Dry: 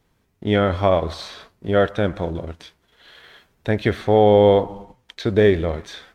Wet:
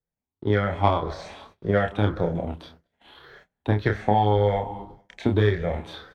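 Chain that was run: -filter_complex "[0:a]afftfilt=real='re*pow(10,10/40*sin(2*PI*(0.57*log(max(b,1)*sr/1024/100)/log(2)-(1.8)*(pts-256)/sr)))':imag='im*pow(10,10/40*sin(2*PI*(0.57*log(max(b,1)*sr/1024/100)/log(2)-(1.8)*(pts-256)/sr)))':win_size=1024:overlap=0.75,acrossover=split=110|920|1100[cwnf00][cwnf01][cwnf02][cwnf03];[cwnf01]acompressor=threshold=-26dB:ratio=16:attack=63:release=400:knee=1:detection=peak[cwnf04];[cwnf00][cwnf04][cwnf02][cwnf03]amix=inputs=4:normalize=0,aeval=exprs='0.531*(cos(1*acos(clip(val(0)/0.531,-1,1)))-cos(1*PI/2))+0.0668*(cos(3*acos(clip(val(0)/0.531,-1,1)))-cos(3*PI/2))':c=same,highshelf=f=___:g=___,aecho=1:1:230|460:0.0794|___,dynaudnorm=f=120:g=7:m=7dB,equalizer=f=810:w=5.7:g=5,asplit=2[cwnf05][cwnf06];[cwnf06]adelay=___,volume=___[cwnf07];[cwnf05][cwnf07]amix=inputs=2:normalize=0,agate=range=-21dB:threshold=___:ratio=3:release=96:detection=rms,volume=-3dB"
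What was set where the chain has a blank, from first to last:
2300, -11.5, 0.0167, 29, -5.5dB, -48dB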